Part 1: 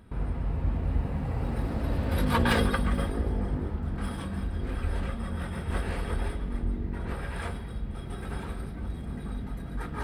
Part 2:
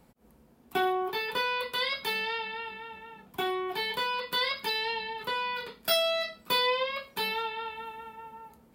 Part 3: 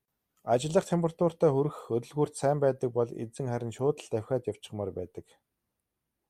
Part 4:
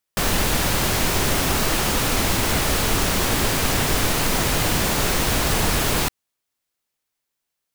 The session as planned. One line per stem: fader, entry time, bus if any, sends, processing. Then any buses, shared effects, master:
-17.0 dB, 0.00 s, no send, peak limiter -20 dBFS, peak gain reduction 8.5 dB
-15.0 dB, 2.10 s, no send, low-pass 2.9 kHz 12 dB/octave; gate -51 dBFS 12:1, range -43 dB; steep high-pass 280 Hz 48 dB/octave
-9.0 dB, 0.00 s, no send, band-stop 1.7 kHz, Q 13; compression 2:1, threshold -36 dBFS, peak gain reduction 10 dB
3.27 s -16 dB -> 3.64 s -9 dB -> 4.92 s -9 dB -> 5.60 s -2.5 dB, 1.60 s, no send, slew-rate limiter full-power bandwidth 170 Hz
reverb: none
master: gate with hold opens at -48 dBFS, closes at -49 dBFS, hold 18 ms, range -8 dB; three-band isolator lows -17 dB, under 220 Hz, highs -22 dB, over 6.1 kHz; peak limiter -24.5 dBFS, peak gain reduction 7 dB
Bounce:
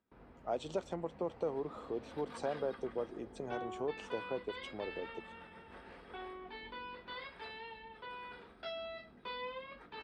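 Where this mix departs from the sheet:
stem 2: entry 2.10 s -> 2.75 s; stem 3 -9.0 dB -> -2.5 dB; stem 4: muted

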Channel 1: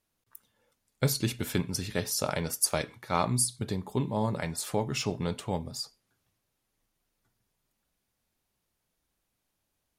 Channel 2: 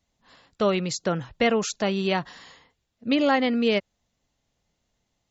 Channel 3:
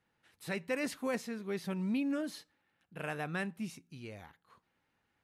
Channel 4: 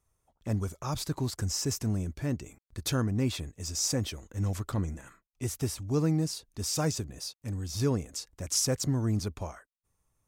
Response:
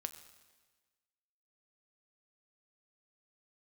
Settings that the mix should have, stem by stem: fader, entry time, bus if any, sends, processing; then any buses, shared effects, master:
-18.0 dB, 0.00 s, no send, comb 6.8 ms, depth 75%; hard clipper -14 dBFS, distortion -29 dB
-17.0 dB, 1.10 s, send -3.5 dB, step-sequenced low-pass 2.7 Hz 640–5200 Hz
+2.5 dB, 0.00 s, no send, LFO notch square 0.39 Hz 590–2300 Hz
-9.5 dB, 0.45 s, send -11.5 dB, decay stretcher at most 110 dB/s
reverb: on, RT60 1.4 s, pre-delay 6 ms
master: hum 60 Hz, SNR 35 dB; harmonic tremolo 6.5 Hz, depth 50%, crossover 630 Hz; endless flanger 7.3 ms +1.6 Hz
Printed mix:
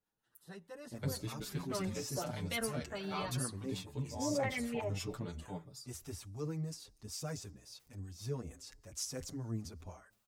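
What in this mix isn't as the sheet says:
stem 1 -18.0 dB -> -10.5 dB; stem 3 +2.5 dB -> -7.0 dB; master: missing hum 60 Hz, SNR 35 dB

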